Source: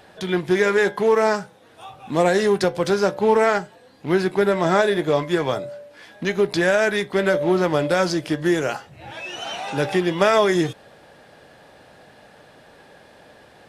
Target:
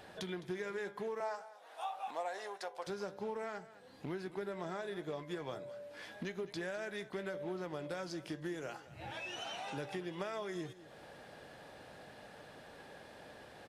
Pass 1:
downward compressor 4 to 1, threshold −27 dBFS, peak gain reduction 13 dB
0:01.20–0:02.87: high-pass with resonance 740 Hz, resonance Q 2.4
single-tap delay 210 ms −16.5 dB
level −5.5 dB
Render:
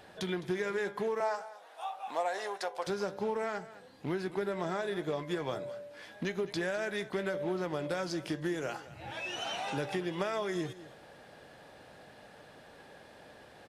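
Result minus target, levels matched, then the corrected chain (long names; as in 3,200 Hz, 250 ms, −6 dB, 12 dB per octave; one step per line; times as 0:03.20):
downward compressor: peak gain reduction −7 dB
downward compressor 4 to 1, threshold −36.5 dBFS, peak gain reduction 20 dB
0:01.20–0:02.87: high-pass with resonance 740 Hz, resonance Q 2.4
single-tap delay 210 ms −16.5 dB
level −5.5 dB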